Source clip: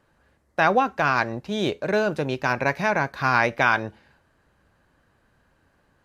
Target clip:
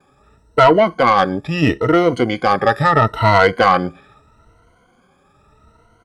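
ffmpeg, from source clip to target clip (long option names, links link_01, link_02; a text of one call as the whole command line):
ffmpeg -i in.wav -af "afftfilt=real='re*pow(10,18/40*sin(2*PI*(1.9*log(max(b,1)*sr/1024/100)/log(2)-(0.77)*(pts-256)/sr)))':imag='im*pow(10,18/40*sin(2*PI*(1.9*log(max(b,1)*sr/1024/100)/log(2)-(0.77)*(pts-256)/sr)))':win_size=1024:overlap=0.75,acontrast=83,asetrate=36028,aresample=44100,atempo=1.22405" out.wav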